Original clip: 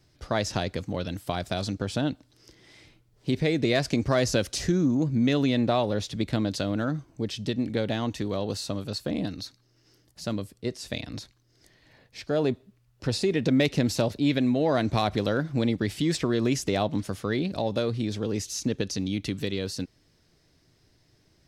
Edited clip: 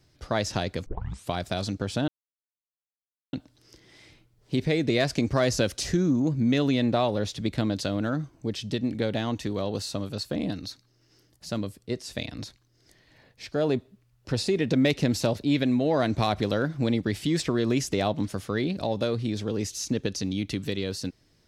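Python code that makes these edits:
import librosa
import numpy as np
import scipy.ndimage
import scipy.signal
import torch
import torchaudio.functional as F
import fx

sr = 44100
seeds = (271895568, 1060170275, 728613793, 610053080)

y = fx.edit(x, sr, fx.tape_start(start_s=0.86, length_s=0.45),
    fx.insert_silence(at_s=2.08, length_s=1.25), tone=tone)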